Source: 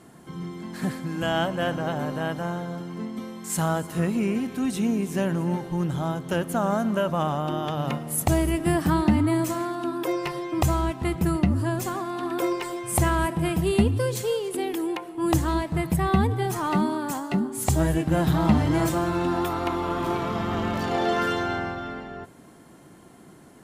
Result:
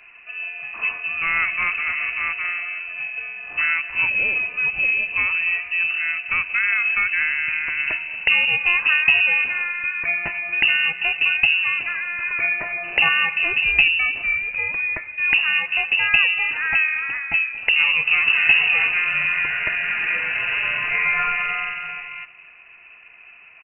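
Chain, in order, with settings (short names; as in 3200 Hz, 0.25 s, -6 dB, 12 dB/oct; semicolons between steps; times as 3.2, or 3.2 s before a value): 12.63–13.09 bell 2200 Hz +6.5 dB 0.9 oct; on a send: feedback echo 0.232 s, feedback 37%, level -20 dB; on the sum: inverted band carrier 2800 Hz; gain +3.5 dB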